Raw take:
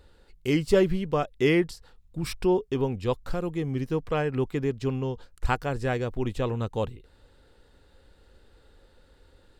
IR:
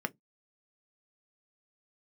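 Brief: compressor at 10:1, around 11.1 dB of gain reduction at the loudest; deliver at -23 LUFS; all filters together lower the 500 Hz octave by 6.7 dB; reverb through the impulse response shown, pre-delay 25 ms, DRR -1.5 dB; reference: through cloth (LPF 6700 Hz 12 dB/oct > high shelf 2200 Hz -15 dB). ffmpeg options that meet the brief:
-filter_complex "[0:a]equalizer=f=500:t=o:g=-8.5,acompressor=threshold=-31dB:ratio=10,asplit=2[a][b];[1:a]atrim=start_sample=2205,adelay=25[c];[b][c]afir=irnorm=-1:irlink=0,volume=-3dB[d];[a][d]amix=inputs=2:normalize=0,lowpass=6.7k,highshelf=f=2.2k:g=-15,volume=11.5dB"

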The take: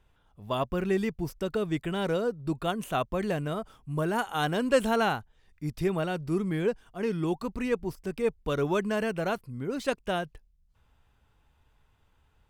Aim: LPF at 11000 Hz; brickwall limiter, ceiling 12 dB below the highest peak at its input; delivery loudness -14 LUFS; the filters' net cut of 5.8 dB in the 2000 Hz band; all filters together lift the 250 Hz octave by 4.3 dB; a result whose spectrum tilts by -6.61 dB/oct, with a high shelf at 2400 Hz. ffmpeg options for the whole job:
-af "lowpass=11k,equalizer=f=250:t=o:g=6,equalizer=f=2k:t=o:g=-5.5,highshelf=f=2.4k:g=-6.5,volume=18dB,alimiter=limit=-4dB:level=0:latency=1"

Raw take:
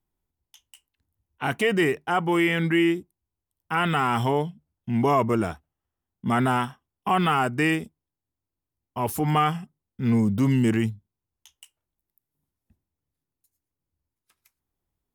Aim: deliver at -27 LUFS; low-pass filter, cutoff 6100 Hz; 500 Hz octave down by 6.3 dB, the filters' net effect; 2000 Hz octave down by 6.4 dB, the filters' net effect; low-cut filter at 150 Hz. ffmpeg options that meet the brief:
-af "highpass=150,lowpass=6.1k,equalizer=f=500:t=o:g=-9,equalizer=f=2k:t=o:g=-7.5,volume=1dB"

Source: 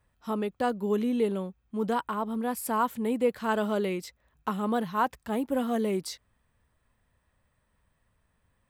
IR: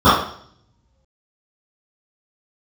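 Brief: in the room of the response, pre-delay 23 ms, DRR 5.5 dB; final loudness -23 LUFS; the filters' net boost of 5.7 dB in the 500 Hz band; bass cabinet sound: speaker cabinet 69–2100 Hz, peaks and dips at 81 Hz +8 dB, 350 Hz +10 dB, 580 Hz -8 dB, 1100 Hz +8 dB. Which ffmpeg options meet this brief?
-filter_complex "[0:a]equalizer=f=500:t=o:g=5.5,asplit=2[a][b];[1:a]atrim=start_sample=2205,adelay=23[c];[b][c]afir=irnorm=-1:irlink=0,volume=-36dB[d];[a][d]amix=inputs=2:normalize=0,highpass=f=69:w=0.5412,highpass=f=69:w=1.3066,equalizer=f=81:t=q:w=4:g=8,equalizer=f=350:t=q:w=4:g=10,equalizer=f=580:t=q:w=4:g=-8,equalizer=f=1.1k:t=q:w=4:g=8,lowpass=f=2.1k:w=0.5412,lowpass=f=2.1k:w=1.3066,volume=1dB"

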